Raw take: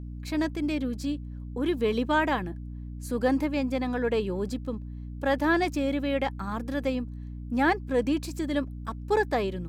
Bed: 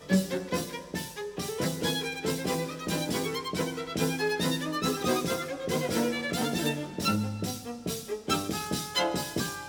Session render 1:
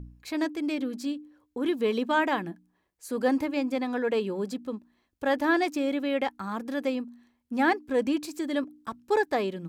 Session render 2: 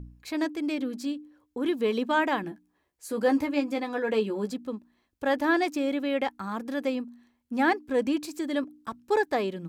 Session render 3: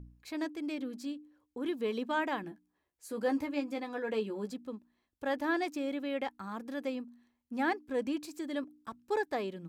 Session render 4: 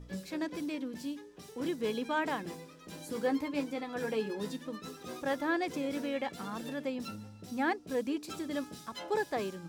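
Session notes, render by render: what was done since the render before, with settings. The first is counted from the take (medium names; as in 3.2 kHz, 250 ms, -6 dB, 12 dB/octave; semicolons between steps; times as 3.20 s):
de-hum 60 Hz, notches 5
2.42–4.50 s: doubling 14 ms -6 dB
trim -7.5 dB
add bed -16.5 dB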